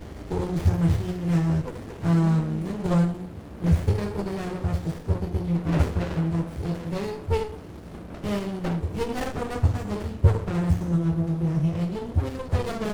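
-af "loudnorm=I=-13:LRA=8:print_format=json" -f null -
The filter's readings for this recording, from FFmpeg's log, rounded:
"input_i" : "-26.0",
"input_tp" : "-6.2",
"input_lra" : "4.4",
"input_thresh" : "-36.1",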